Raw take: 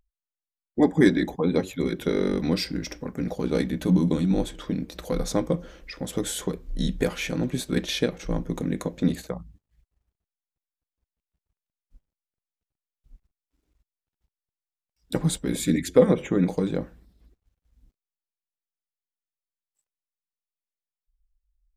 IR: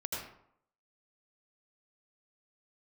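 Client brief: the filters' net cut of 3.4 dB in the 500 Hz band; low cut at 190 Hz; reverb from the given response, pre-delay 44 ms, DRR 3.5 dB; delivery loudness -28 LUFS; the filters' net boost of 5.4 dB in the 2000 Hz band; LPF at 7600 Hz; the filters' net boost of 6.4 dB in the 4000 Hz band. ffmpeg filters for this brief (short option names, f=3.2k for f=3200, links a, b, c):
-filter_complex "[0:a]highpass=190,lowpass=7.6k,equalizer=f=500:t=o:g=-4,equalizer=f=2k:t=o:g=5,equalizer=f=4k:t=o:g=6.5,asplit=2[a][b];[1:a]atrim=start_sample=2205,adelay=44[c];[b][c]afir=irnorm=-1:irlink=0,volume=-6dB[d];[a][d]amix=inputs=2:normalize=0,volume=-2.5dB"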